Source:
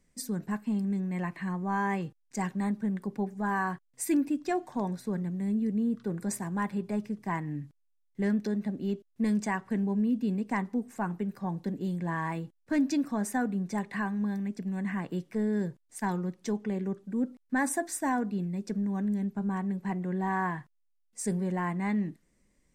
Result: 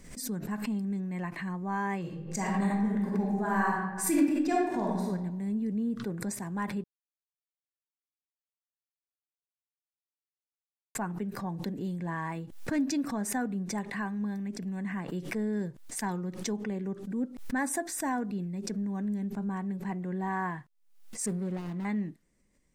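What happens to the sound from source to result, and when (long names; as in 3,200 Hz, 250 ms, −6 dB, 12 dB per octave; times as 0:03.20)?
0:02.00–0:05.04: thrown reverb, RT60 1.1 s, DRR −3.5 dB
0:06.84–0:10.95: silence
0:21.26–0:21.85: running median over 41 samples
whole clip: background raised ahead of every attack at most 76 dB per second; level −2.5 dB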